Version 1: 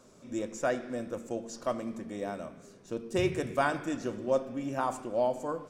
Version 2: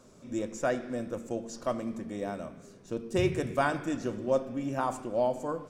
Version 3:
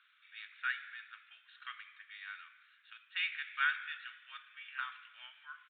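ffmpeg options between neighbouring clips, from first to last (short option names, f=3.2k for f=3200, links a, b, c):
-af "lowshelf=f=200:g=5"
-af "asuperpass=centerf=2700:order=12:qfactor=0.74,aresample=8000,aresample=44100,volume=4dB"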